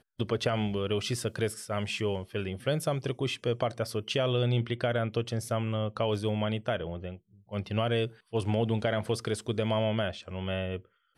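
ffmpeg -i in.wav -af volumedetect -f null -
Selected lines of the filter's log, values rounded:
mean_volume: -30.7 dB
max_volume: -15.4 dB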